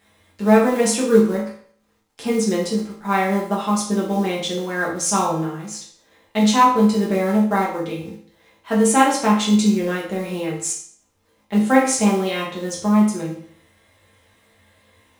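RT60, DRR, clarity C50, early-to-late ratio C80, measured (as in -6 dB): 0.55 s, -5.5 dB, 5.0 dB, 9.0 dB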